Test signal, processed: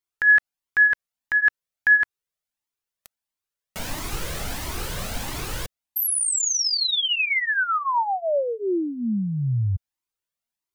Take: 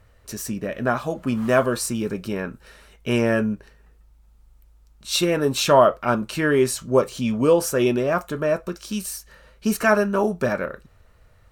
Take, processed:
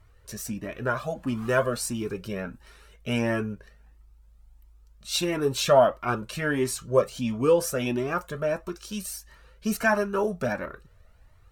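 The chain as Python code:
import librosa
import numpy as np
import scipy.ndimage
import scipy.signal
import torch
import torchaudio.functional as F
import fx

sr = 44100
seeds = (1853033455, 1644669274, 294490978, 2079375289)

y = fx.comb_cascade(x, sr, direction='rising', hz=1.5)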